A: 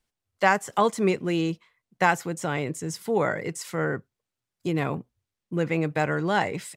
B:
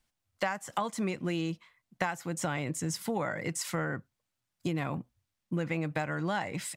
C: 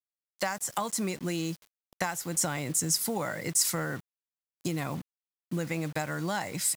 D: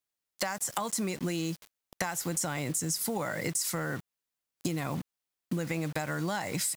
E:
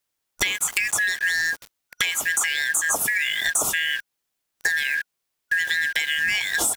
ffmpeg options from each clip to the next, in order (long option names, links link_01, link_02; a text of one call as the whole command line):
ffmpeg -i in.wav -af "equalizer=frequency=420:width_type=o:width=0.35:gain=-10.5,acompressor=threshold=-30dB:ratio=12,volume=2dB" out.wav
ffmpeg -i in.wav -af "aexciter=amount=2:drive=9.3:freq=4300,acrusher=bits=7:mix=0:aa=0.000001" out.wav
ffmpeg -i in.wav -filter_complex "[0:a]asplit=2[link_01][link_02];[link_02]alimiter=limit=-21.5dB:level=0:latency=1:release=18,volume=2dB[link_03];[link_01][link_03]amix=inputs=2:normalize=0,acompressor=threshold=-29dB:ratio=6" out.wav
ffmpeg -i in.wav -af "afftfilt=real='real(if(lt(b,272),68*(eq(floor(b/68),0)*3+eq(floor(b/68),1)*0+eq(floor(b/68),2)*1+eq(floor(b/68),3)*2)+mod(b,68),b),0)':imag='imag(if(lt(b,272),68*(eq(floor(b/68),0)*3+eq(floor(b/68),1)*0+eq(floor(b/68),2)*1+eq(floor(b/68),3)*2)+mod(b,68),b),0)':win_size=2048:overlap=0.75,volume=9dB" out.wav